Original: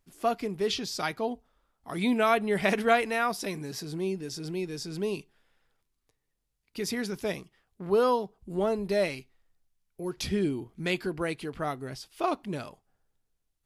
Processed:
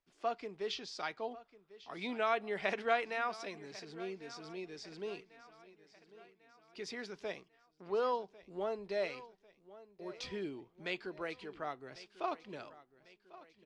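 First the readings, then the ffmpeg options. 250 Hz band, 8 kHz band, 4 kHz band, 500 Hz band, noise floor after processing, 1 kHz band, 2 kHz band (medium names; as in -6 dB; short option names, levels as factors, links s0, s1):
-15.5 dB, -15.0 dB, -9.0 dB, -9.5 dB, -73 dBFS, -8.0 dB, -8.0 dB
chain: -filter_complex "[0:a]lowpass=f=9800:w=0.5412,lowpass=f=9800:w=1.3066,acrossover=split=350 6100:gain=0.251 1 0.0708[s0][s1][s2];[s0][s1][s2]amix=inputs=3:normalize=0,aecho=1:1:1097|2194|3291|4388:0.126|0.0629|0.0315|0.0157,volume=0.398"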